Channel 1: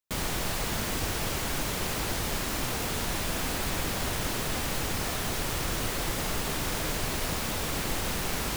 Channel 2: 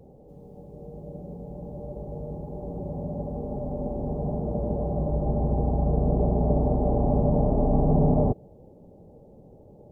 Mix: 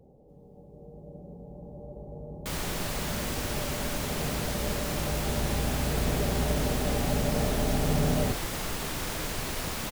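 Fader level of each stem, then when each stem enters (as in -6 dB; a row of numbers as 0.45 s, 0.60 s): -2.5 dB, -6.0 dB; 2.35 s, 0.00 s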